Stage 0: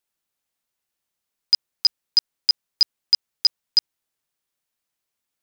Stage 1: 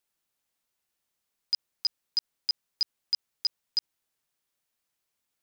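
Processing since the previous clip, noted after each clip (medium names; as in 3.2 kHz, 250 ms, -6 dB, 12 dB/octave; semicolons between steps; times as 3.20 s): peak limiter -19 dBFS, peak gain reduction 10.5 dB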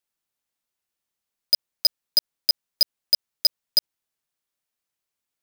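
waveshaping leveller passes 5; trim +6.5 dB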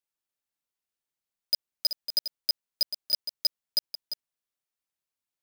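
chunks repeated in reverse 247 ms, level -10 dB; trim -7 dB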